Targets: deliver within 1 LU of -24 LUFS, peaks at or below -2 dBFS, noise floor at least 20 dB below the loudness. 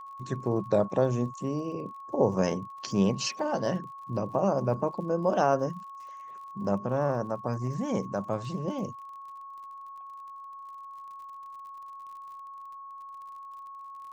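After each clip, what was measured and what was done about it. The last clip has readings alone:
ticks 50/s; steady tone 1100 Hz; tone level -41 dBFS; loudness -29.5 LUFS; peak -10.5 dBFS; loudness target -24.0 LUFS
-> de-click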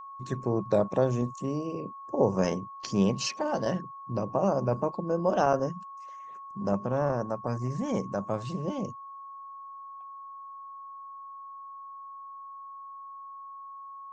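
ticks 0.071/s; steady tone 1100 Hz; tone level -41 dBFS
-> notch 1100 Hz, Q 30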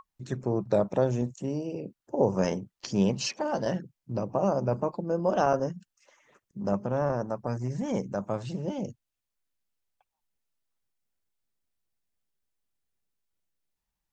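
steady tone none; loudness -29.5 LUFS; peak -10.5 dBFS; loudness target -24.0 LUFS
-> gain +5.5 dB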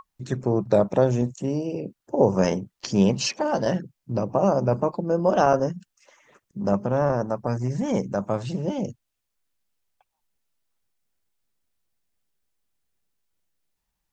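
loudness -24.0 LUFS; peak -5.0 dBFS; noise floor -80 dBFS

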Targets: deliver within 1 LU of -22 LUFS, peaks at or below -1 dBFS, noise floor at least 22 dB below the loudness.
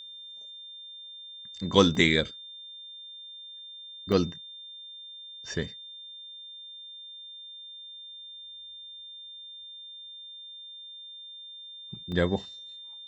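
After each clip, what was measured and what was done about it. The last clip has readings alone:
dropouts 3; longest dropout 2.5 ms; steady tone 3600 Hz; tone level -42 dBFS; loudness -33.0 LUFS; peak -4.0 dBFS; loudness target -22.0 LUFS
-> interpolate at 1.95/4.12/12.12, 2.5 ms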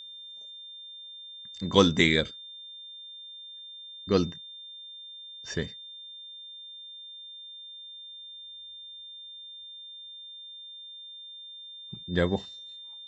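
dropouts 0; steady tone 3600 Hz; tone level -42 dBFS
-> notch 3600 Hz, Q 30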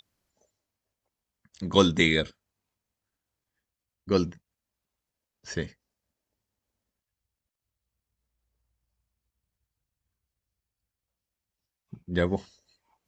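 steady tone none; loudness -26.5 LUFS; peak -4.5 dBFS; loudness target -22.0 LUFS
-> gain +4.5 dB; limiter -1 dBFS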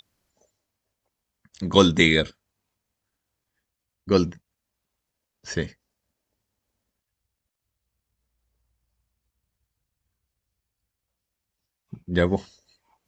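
loudness -22.5 LUFS; peak -1.0 dBFS; noise floor -84 dBFS

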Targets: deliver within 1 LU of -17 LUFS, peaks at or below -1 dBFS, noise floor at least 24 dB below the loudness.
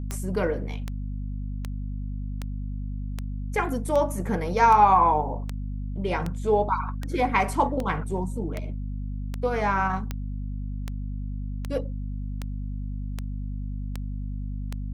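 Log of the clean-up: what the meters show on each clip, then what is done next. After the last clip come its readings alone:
clicks 20; hum 50 Hz; harmonics up to 250 Hz; hum level -29 dBFS; loudness -27.5 LUFS; peak -7.0 dBFS; loudness target -17.0 LUFS
-> de-click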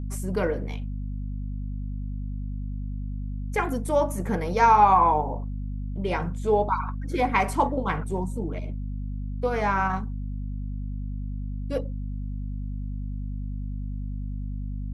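clicks 0; hum 50 Hz; harmonics up to 250 Hz; hum level -29 dBFS
-> de-hum 50 Hz, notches 5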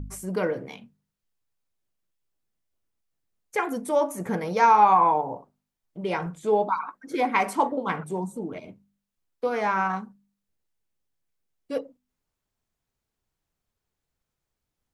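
hum none; loudness -25.0 LUFS; peak -8.0 dBFS; loudness target -17.0 LUFS
-> gain +8 dB; limiter -1 dBFS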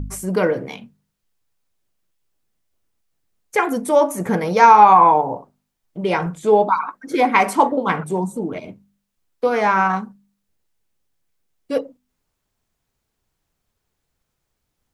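loudness -17.0 LUFS; peak -1.0 dBFS; noise floor -77 dBFS

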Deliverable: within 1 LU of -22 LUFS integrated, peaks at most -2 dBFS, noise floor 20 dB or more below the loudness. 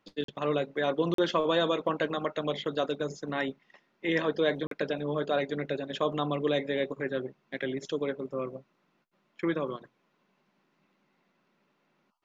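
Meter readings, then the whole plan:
dropouts 3; longest dropout 43 ms; loudness -31.0 LUFS; peak -13.0 dBFS; loudness target -22.0 LUFS
-> interpolate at 0.24/1.14/4.67, 43 ms; gain +9 dB

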